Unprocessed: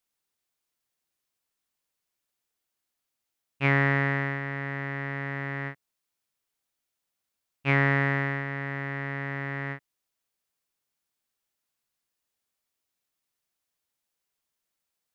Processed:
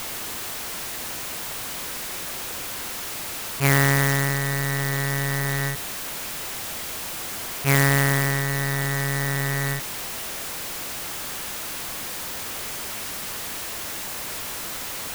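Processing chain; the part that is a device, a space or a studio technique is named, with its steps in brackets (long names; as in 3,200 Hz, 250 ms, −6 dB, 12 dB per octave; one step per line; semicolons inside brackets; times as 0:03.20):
early CD player with a faulty converter (converter with a step at zero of −26 dBFS; converter with an unsteady clock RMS 0.06 ms)
level +2.5 dB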